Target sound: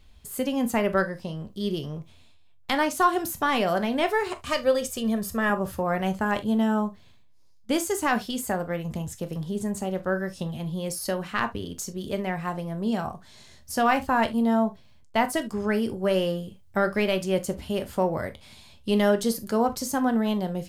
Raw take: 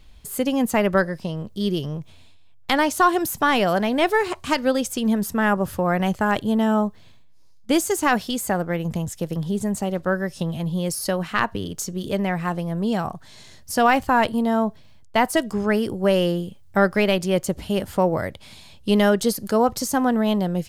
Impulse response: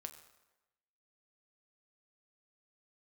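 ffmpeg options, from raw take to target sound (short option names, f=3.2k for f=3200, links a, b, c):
-filter_complex "[0:a]asettb=1/sr,asplit=3[a][b][c];[a]atrim=end=4.464[d];[b]atrim=start=4.46:end=5.5,asetpts=PTS-STARTPTS,afade=t=in:d=0.004:c=qsin,afade=t=out:st=1.036:d=0.004:c=qsin,aecho=1:1:1.7:0.56,atrim=end_sample=45864[e];[c]atrim=start=5.496[f];[d][e]acrossfade=d=0.004:c1=hsin:c2=qsin[g];[g][f]acrossfade=d=0.004:c1=qsin:c2=hsin[h];[1:a]atrim=start_sample=2205,atrim=end_sample=3528[i];[h][i]afir=irnorm=-1:irlink=0"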